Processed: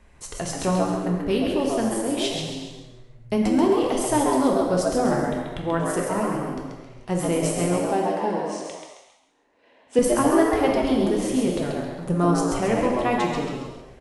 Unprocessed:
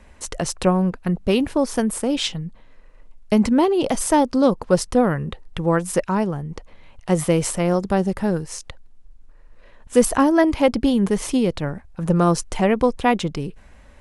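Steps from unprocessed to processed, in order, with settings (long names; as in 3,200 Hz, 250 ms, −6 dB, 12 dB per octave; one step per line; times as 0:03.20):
0:07.77–0:09.99: loudspeaker in its box 270–8,500 Hz, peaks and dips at 270 Hz +10 dB, 490 Hz +4 dB, 830 Hz +9 dB, 1,200 Hz −9 dB, 2,900 Hz +4 dB, 7,000 Hz −4 dB
echo with shifted repeats 134 ms, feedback 35%, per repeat +110 Hz, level −5 dB
reverb whose tail is shaped and stops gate 480 ms falling, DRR 0 dB
level −7 dB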